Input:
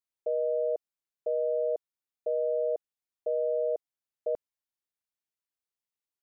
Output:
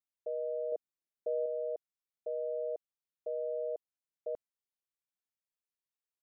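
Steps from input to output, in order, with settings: 0.72–1.46 bell 240 Hz +6.5 dB 2.3 oct; gain -7.5 dB

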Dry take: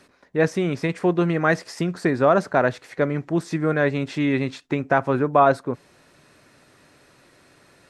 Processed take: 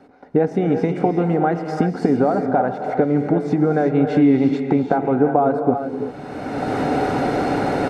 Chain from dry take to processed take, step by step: recorder AGC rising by 24 dB/s; LPF 1800 Hz 6 dB/oct; comb 1.4 ms, depth 46%; compressor, threshold -22 dBFS, peak gain reduction 11 dB; small resonant body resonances 290/420/750 Hz, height 16 dB, ringing for 30 ms; vibrato 2.7 Hz 12 cents; non-linear reverb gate 0.39 s rising, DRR 5 dB; gain -3 dB

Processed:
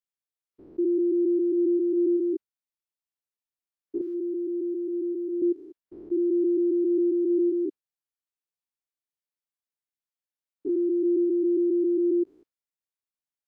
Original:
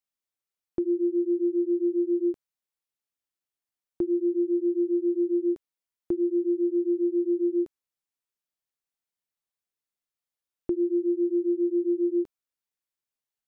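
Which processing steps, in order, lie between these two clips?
stepped spectrum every 0.2 s; spectral noise reduction 9 dB; 4.01–5.42 tilt +4 dB/oct; gain +3 dB

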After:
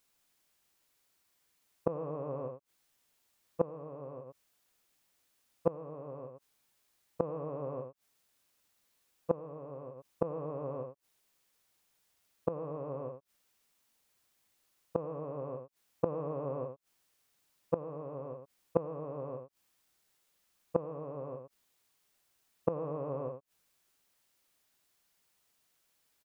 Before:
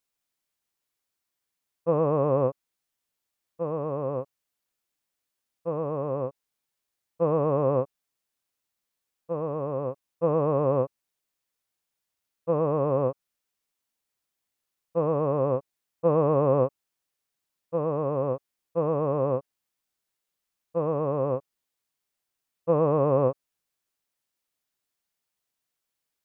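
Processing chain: echo 75 ms -7 dB; flipped gate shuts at -22 dBFS, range -24 dB; gain +8 dB

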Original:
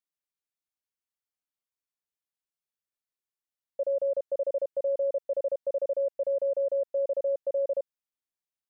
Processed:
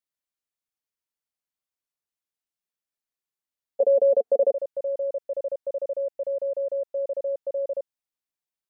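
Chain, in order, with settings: 3.8–4.52 small resonant body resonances 240/450/710 Hz, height 17 dB, ringing for 30 ms

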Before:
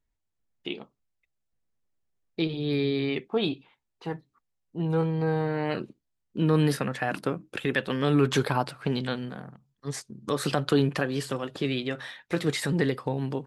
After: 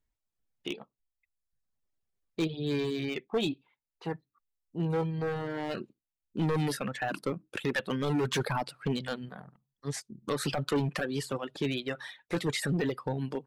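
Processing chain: hard clip -21.5 dBFS, distortion -11 dB; reverb removal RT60 0.89 s; gain -1.5 dB

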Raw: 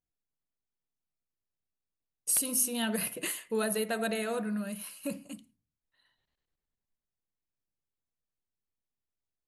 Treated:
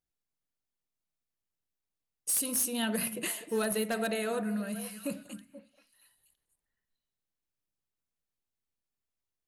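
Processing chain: wavefolder -22.5 dBFS; delay with a stepping band-pass 0.24 s, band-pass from 240 Hz, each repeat 1.4 oct, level -9.5 dB

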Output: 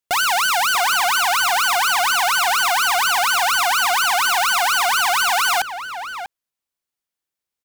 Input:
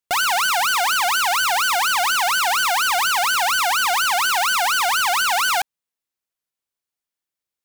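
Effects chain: outdoor echo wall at 110 m, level -9 dB; gain +1 dB

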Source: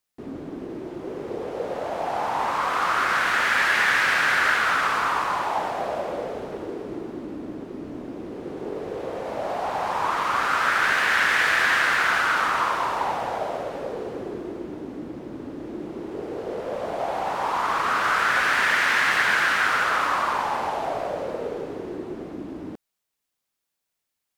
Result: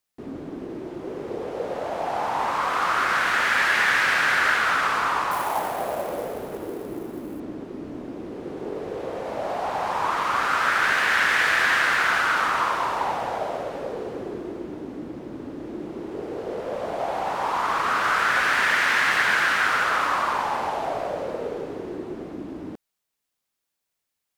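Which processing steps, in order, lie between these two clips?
5.31–7.4 sample-rate reducer 12000 Hz, jitter 20%

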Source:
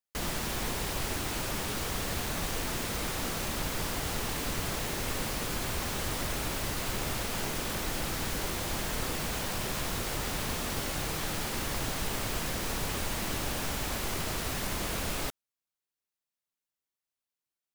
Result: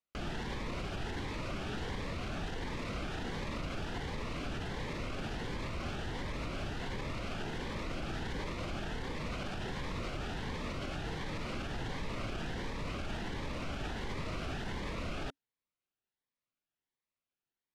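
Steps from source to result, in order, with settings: LPF 2900 Hz 12 dB/oct; limiter -32 dBFS, peak gain reduction 10 dB; cascading phaser rising 1.4 Hz; gain +3 dB

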